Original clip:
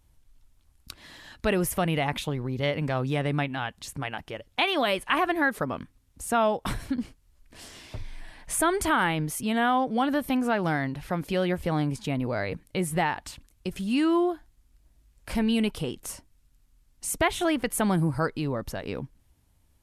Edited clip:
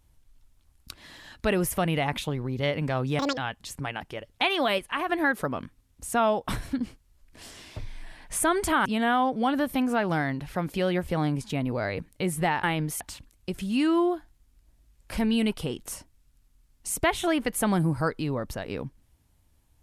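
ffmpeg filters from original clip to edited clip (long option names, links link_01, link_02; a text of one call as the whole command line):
ffmpeg -i in.wav -filter_complex "[0:a]asplit=8[link_01][link_02][link_03][link_04][link_05][link_06][link_07][link_08];[link_01]atrim=end=3.194[link_09];[link_02]atrim=start=3.19:end=3.55,asetpts=PTS-STARTPTS,asetrate=85995,aresample=44100[link_10];[link_03]atrim=start=3.546:end=4.962[link_11];[link_04]atrim=start=4.958:end=5.272,asetpts=PTS-STARTPTS,volume=-5dB[link_12];[link_05]atrim=start=5.268:end=9.032[link_13];[link_06]atrim=start=9.398:end=13.182[link_14];[link_07]atrim=start=9.028:end=9.402[link_15];[link_08]atrim=start=13.178[link_16];[link_09][link_10]acrossfade=duration=0.004:curve1=hsin:curve2=hsin[link_17];[link_17][link_11]acrossfade=duration=0.004:curve1=hsin:curve2=hsin[link_18];[link_18][link_12]acrossfade=duration=0.004:curve1=hsin:curve2=hsin[link_19];[link_19][link_13]acrossfade=duration=0.004:curve1=hsin:curve2=hsin[link_20];[link_20][link_14]acrossfade=duration=0.004:curve1=hsin:curve2=hsin[link_21];[link_21][link_15]acrossfade=duration=0.004:curve1=hsin:curve2=hsin[link_22];[link_22][link_16]acrossfade=duration=0.004:curve1=hsin:curve2=hsin" out.wav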